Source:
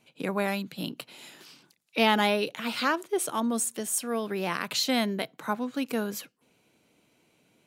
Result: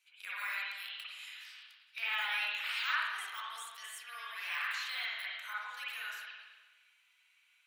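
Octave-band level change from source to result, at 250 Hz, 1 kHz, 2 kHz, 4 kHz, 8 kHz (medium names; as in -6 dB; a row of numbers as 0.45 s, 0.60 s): under -40 dB, -11.5 dB, -2.0 dB, -6.5 dB, -18.5 dB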